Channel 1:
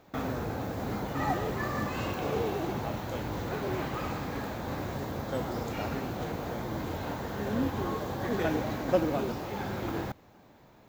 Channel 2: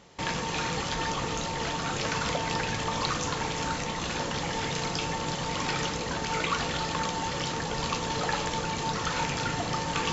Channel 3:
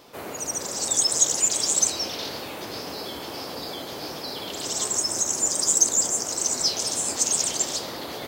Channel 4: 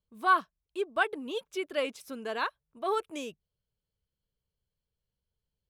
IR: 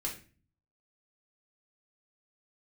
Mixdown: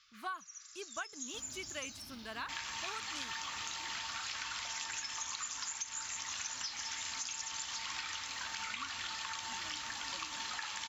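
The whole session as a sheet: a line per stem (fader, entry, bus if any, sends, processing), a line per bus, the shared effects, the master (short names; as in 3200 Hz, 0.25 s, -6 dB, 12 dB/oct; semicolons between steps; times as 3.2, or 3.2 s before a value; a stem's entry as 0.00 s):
-20.0 dB, 1.20 s, no send, comb 3.3 ms, depth 52%
-2.0 dB, 2.30 s, no send, HPF 1000 Hz 12 dB/oct
-10.0 dB, 0.00 s, send -16 dB, FFT band-pass 1100–7400 Hz; auto duck -18 dB, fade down 0.75 s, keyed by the fourth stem
-3.5 dB, 0.00 s, no send, dry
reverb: on, RT60 0.35 s, pre-delay 3 ms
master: bell 470 Hz -15 dB 1.2 oct; compressor 12:1, threshold -37 dBFS, peak gain reduction 15.5 dB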